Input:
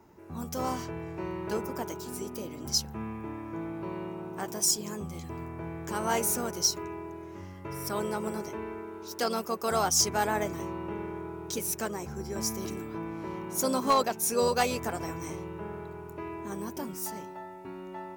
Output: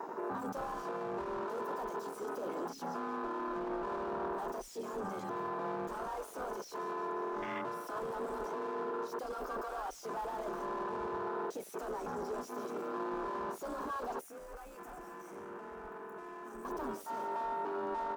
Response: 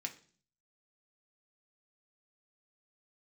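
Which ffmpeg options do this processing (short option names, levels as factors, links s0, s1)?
-filter_complex "[0:a]asplit=2[s0][s1];[s1]highpass=f=720:p=1,volume=25.1,asoftclip=type=tanh:threshold=0.168[s2];[s0][s2]amix=inputs=2:normalize=0,lowpass=f=6300:p=1,volume=0.501,equalizer=f=75:w=0.77:g=-14,aecho=1:1:177|354|531|708:0.178|0.0711|0.0285|0.0114,volume=31.6,asoftclip=hard,volume=0.0316,afreqshift=28,bandreject=f=137.1:t=h:w=4,bandreject=f=274.2:t=h:w=4,bandreject=f=411.3:t=h:w=4,bandreject=f=548.4:t=h:w=4,alimiter=level_in=2.11:limit=0.0631:level=0:latency=1:release=11,volume=0.473,afwtdn=0.0126,asettb=1/sr,asplit=3[s3][s4][s5];[s3]atrim=end=14.214[s6];[s4]atrim=start=14.21:end=16.65,asetpts=PTS-STARTPTS,afade=t=in:d=0.004:c=qsin,afade=t=out:st=2.436:d=0.004:c=qsin,equalizer=f=125:t=o:w=1:g=-11,equalizer=f=500:t=o:w=1:g=-9,equalizer=f=1000:t=o:w=1:g=-8,equalizer=f=4000:t=o:w=1:g=-11[s7];[s5]atrim=start=16.646[s8];[s6][s7]acrossfade=d=0.004:c1=hsin:c2=qsin[s9];[s9][s8]acrossfade=d=0.004:c1=qsin:c2=hsin,volume=1.12"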